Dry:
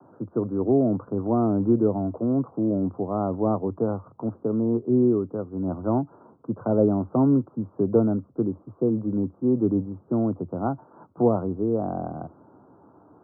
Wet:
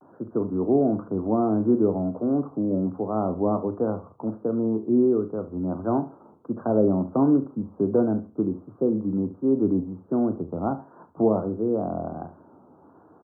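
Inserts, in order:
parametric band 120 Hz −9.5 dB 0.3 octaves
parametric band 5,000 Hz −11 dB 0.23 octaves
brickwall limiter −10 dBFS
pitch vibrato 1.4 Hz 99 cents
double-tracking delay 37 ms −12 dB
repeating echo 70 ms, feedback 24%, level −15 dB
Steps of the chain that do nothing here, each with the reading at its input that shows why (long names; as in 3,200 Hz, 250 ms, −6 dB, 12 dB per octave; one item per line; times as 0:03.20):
parametric band 5,000 Hz: nothing at its input above 1,200 Hz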